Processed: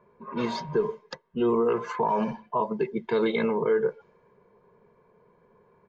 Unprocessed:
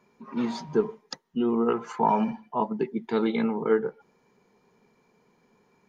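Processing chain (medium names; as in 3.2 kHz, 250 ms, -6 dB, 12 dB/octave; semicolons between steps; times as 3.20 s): level-controlled noise filter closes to 1.5 kHz, open at -20.5 dBFS; comb 1.9 ms, depth 65%; peak limiter -19.5 dBFS, peak gain reduction 9.5 dB; trim +3.5 dB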